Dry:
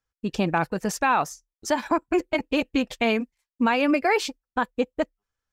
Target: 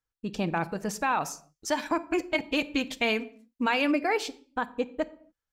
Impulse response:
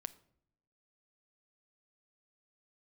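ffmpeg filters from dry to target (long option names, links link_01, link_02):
-filter_complex "[1:a]atrim=start_sample=2205,afade=type=out:start_time=0.34:duration=0.01,atrim=end_sample=15435[link_01];[0:a][link_01]afir=irnorm=-1:irlink=0,asettb=1/sr,asplit=3[link_02][link_03][link_04];[link_02]atrim=end=1.194[link_05];[link_03]atrim=start=1.19:end=3.92,asetpts=PTS-STARTPTS,afade=type=in:duration=0.004:curve=qsin,afade=type=out:start_time=2.726:duration=0.004:curve=qsin,adynamicequalizer=threshold=0.00891:dfrequency=1600:dqfactor=0.7:tfrequency=1600:tqfactor=0.7:attack=5:release=100:ratio=0.375:range=3:mode=boostabove:tftype=highshelf[link_06];[link_04]atrim=start=3.916[link_07];[link_05][link_06]acrossfade=duration=0.004:curve1=hsin:curve2=qsin[link_08];[link_08][link_07]acrossfade=duration=0.004:curve1=qsin:curve2=hsin,volume=-2dB"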